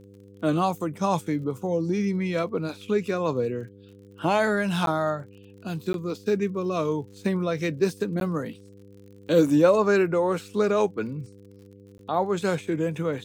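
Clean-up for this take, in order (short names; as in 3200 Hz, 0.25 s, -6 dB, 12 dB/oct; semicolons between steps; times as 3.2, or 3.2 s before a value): de-click; de-hum 99.5 Hz, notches 5; interpolate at 4.86/5.93/8.2/11.98, 12 ms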